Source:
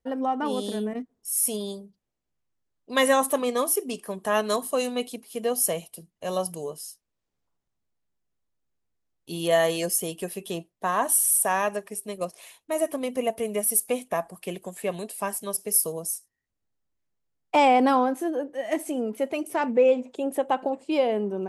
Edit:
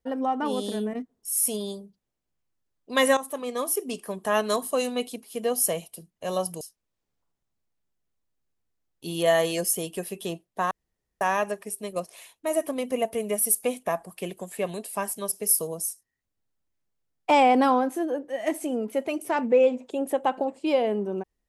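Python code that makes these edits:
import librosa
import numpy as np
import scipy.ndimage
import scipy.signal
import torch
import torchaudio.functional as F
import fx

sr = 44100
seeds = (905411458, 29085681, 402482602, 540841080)

y = fx.edit(x, sr, fx.fade_in_from(start_s=3.17, length_s=0.79, floor_db=-14.0),
    fx.cut(start_s=6.61, length_s=0.25),
    fx.room_tone_fill(start_s=10.96, length_s=0.5), tone=tone)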